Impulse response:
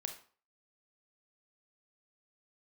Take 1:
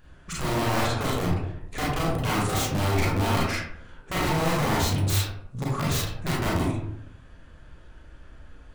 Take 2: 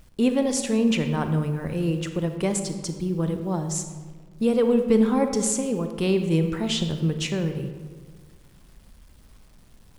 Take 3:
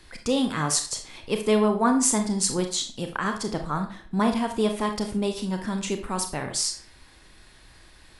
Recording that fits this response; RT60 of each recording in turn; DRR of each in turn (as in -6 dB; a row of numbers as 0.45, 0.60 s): 3; 0.70, 1.6, 0.45 s; -5.5, 7.0, 5.0 dB